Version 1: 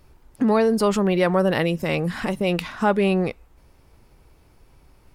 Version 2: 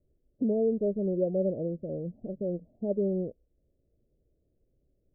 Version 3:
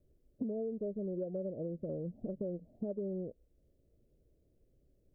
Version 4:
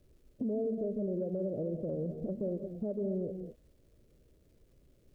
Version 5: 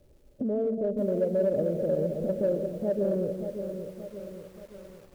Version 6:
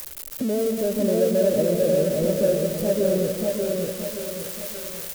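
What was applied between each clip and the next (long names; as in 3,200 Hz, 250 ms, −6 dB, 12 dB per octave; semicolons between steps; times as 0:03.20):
Butterworth low-pass 630 Hz 72 dB per octave; low-shelf EQ 180 Hz −5 dB; expander for the loud parts 1.5 to 1, over −36 dBFS; level −5.5 dB
downward compressor 10 to 1, threshold −37 dBFS, peak gain reduction 14.5 dB; level +2 dB
surface crackle 470 per second −71 dBFS; reverb whose tail is shaped and stops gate 250 ms rising, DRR 8.5 dB; brickwall limiter −32.5 dBFS, peak gain reduction 6 dB; level +5.5 dB
hollow resonant body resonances 580/820 Hz, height 10 dB, ringing for 35 ms; in parallel at −12 dB: gain into a clipping stage and back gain 28.5 dB; on the sum: feedback echo at a low word length 577 ms, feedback 55%, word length 9 bits, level −8 dB; level +2 dB
spike at every zero crossing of −26 dBFS; single-tap delay 595 ms −3.5 dB; level +4.5 dB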